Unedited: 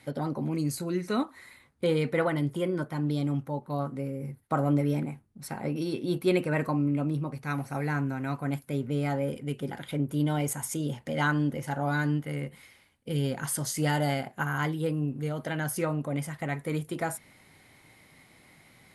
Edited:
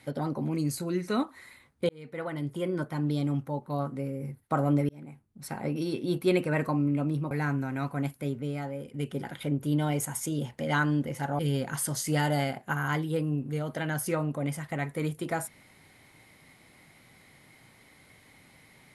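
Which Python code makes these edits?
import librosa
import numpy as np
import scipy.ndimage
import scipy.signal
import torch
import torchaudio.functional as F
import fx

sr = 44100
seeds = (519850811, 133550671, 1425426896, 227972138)

y = fx.edit(x, sr, fx.fade_in_span(start_s=1.89, length_s=0.94),
    fx.fade_in_span(start_s=4.89, length_s=0.6),
    fx.cut(start_s=7.31, length_s=0.48),
    fx.fade_out_to(start_s=8.67, length_s=0.75, curve='qua', floor_db=-8.0),
    fx.cut(start_s=11.87, length_s=1.22), tone=tone)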